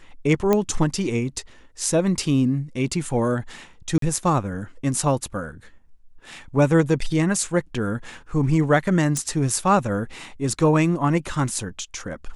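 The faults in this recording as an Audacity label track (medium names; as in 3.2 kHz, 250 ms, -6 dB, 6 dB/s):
0.530000	0.530000	pop -7 dBFS
3.980000	4.020000	dropout 43 ms
9.170000	9.170000	pop -11 dBFS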